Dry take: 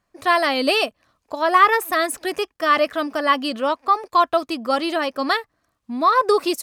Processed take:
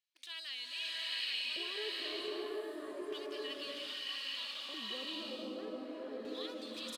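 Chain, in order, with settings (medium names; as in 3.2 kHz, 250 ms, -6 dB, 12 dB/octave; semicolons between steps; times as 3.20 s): amplifier tone stack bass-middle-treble 10-0-1; in parallel at -8.5 dB: companded quantiser 4-bit; on the sum: tape speed -5%; band-stop 1.6 kHz, Q 29; on a send: delay 821 ms -8.5 dB; on the sum: peak limiter -42.5 dBFS, peak gain reduction 15 dB; LFO band-pass square 0.32 Hz 420–3200 Hz; tilt EQ +2.5 dB/octave; swelling reverb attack 740 ms, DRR -5.5 dB; trim +11 dB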